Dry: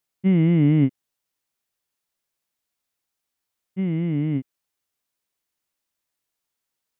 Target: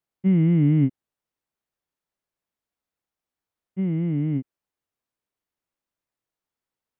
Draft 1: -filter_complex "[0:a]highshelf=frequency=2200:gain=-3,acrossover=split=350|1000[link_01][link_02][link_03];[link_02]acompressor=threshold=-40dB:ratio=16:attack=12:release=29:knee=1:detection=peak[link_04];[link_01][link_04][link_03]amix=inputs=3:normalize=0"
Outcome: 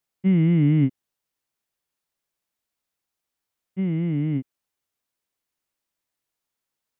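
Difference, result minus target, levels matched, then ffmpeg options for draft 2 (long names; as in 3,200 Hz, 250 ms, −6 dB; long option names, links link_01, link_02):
4,000 Hz band +5.5 dB
-filter_complex "[0:a]highshelf=frequency=2200:gain=-12,acrossover=split=350|1000[link_01][link_02][link_03];[link_02]acompressor=threshold=-40dB:ratio=16:attack=12:release=29:knee=1:detection=peak[link_04];[link_01][link_04][link_03]amix=inputs=3:normalize=0"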